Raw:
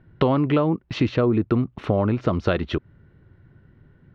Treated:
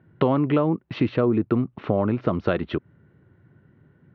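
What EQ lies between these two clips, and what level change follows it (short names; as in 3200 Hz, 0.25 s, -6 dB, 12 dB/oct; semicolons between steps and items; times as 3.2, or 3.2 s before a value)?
HPF 120 Hz 12 dB/oct; air absorption 240 m; 0.0 dB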